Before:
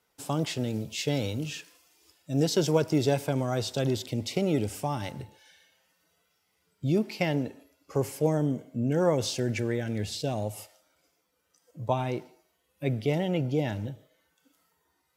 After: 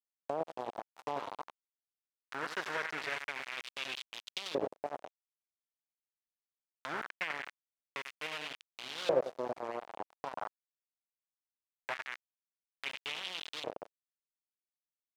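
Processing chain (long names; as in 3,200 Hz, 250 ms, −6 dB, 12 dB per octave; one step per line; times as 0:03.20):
in parallel at +2.5 dB: downward compressor 4 to 1, threshold −43 dBFS, peak gain reduction 20.5 dB
on the sum: repeating echo 91 ms, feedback 43%, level −6.5 dB
centre clipping without the shift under −20.5 dBFS
auto-filter band-pass saw up 0.22 Hz 540–3,700 Hz
one half of a high-frequency compander encoder only
level −1 dB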